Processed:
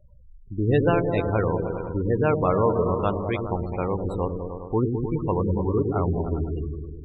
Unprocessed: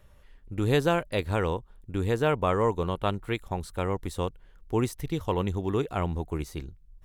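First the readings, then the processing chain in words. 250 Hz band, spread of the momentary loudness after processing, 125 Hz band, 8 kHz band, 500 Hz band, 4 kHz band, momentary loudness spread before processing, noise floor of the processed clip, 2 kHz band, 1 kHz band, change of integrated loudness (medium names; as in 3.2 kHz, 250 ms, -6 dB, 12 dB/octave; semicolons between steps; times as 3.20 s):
+5.0 dB, 8 LU, +5.0 dB, under -20 dB, +4.5 dB, no reading, 10 LU, -47 dBFS, 0.0 dB, +3.0 dB, +4.0 dB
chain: delay with an opening low-pass 102 ms, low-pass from 400 Hz, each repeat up 1 oct, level -3 dB; spectral gate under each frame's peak -20 dB strong; trim +2.5 dB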